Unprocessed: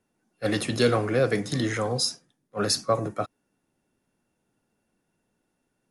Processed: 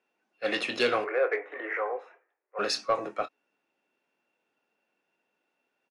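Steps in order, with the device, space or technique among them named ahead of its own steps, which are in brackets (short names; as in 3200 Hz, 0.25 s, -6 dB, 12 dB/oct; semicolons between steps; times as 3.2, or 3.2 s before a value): 1.04–2.59 elliptic band-pass 390–2100 Hz, stop band 40 dB; intercom (BPF 460–4200 Hz; bell 2600 Hz +8 dB 0.36 oct; soft clip -14 dBFS, distortion -22 dB; doubler 24 ms -10.5 dB)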